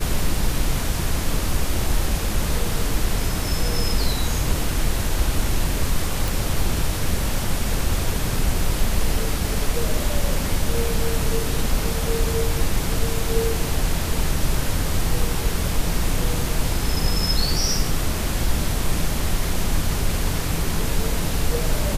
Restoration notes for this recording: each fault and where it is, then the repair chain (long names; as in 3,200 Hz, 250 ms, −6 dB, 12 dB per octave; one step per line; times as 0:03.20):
0:06.28: click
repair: click removal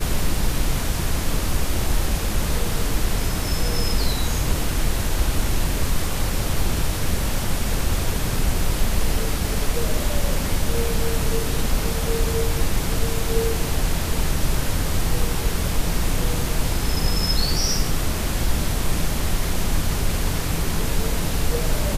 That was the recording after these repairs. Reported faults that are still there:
none of them is left